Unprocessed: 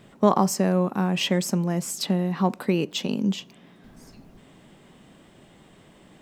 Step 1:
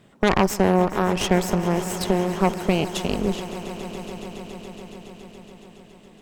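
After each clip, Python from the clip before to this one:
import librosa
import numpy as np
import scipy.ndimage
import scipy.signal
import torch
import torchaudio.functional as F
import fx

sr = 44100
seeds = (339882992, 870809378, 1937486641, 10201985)

y = fx.cheby_harmonics(x, sr, harmonics=(6,), levels_db=(-8,), full_scale_db=-5.0)
y = fx.echo_swell(y, sr, ms=140, loudest=5, wet_db=-17.5)
y = y * 10.0 ** (-3.0 / 20.0)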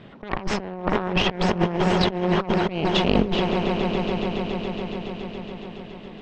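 y = fx.over_compress(x, sr, threshold_db=-26.0, ratio=-0.5)
y = scipy.signal.sosfilt(scipy.signal.butter(4, 4100.0, 'lowpass', fs=sr, output='sos'), y)
y = y * 10.0 ** (5.0 / 20.0)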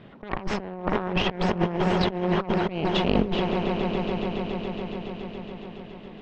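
y = fx.high_shelf(x, sr, hz=6000.0, db=-10.0)
y = y * 10.0 ** (-2.5 / 20.0)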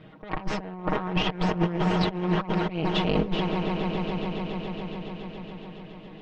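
y = x + 0.74 * np.pad(x, (int(6.4 * sr / 1000.0), 0))[:len(x)]
y = y * 10.0 ** (-3.0 / 20.0)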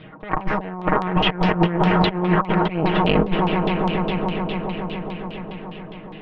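y = fx.filter_lfo_lowpass(x, sr, shape='saw_down', hz=4.9, low_hz=860.0, high_hz=3800.0, q=2.0)
y = y * 10.0 ** (6.0 / 20.0)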